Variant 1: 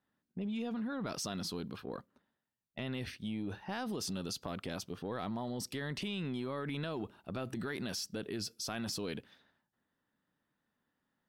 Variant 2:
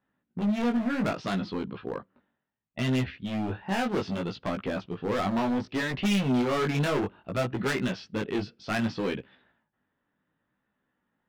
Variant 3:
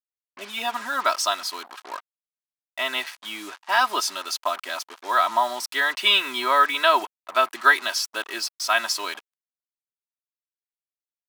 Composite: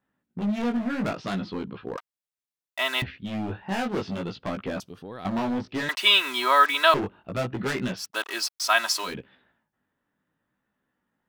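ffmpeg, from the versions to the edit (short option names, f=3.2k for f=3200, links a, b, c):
-filter_complex "[2:a]asplit=3[a][b][c];[1:a]asplit=5[d][e][f][g][h];[d]atrim=end=1.972[i];[a]atrim=start=1.968:end=3.022[j];[e]atrim=start=3.018:end=4.802[k];[0:a]atrim=start=4.798:end=5.252[l];[f]atrim=start=5.248:end=5.892[m];[b]atrim=start=5.888:end=6.942[n];[g]atrim=start=6.938:end=8.12[o];[c]atrim=start=7.96:end=9.18[p];[h]atrim=start=9.02[q];[i][j]acrossfade=d=0.004:c1=hsin:c2=hsin[r];[r][k]acrossfade=d=0.004:c1=hsin:c2=hsin[s];[s][l]acrossfade=d=0.004:c1=hsin:c2=hsin[t];[t][m]acrossfade=d=0.004:c1=hsin:c2=hsin[u];[u][n]acrossfade=d=0.004:c1=hsin:c2=hsin[v];[v][o]acrossfade=d=0.004:c1=hsin:c2=hsin[w];[w][p]acrossfade=d=0.16:c1=tri:c2=tri[x];[x][q]acrossfade=d=0.16:c1=tri:c2=tri"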